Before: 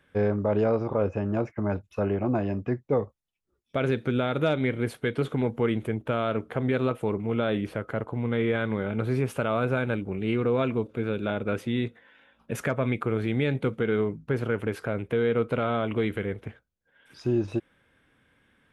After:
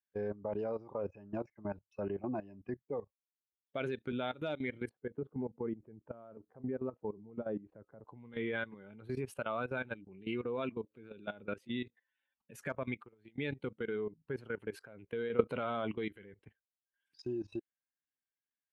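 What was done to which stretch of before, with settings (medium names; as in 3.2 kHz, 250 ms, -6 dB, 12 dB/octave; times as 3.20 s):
4.89–8.05 s: Bessel low-pass 880 Hz
12.97–13.38 s: compression 4:1, threshold -35 dBFS
15.30–15.91 s: gain +7.5 dB
whole clip: expander on every frequency bin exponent 1.5; high-pass 260 Hz 6 dB/octave; level held to a coarse grid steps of 17 dB; trim -2 dB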